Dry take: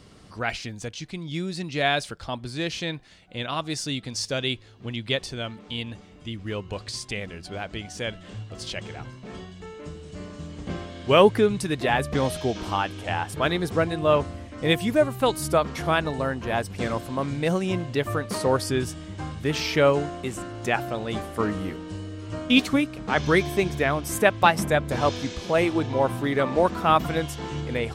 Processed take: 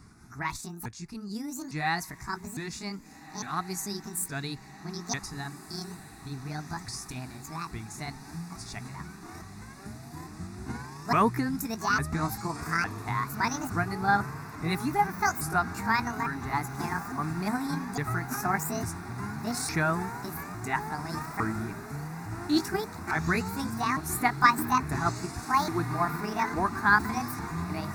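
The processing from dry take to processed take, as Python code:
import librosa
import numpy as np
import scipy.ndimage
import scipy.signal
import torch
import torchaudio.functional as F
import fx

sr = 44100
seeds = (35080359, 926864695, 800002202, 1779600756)

y = fx.pitch_ramps(x, sr, semitones=10.0, every_ms=856)
y = fx.fixed_phaser(y, sr, hz=1300.0, stages=4)
y = fx.echo_diffused(y, sr, ms=1661, feedback_pct=77, wet_db=-16.0)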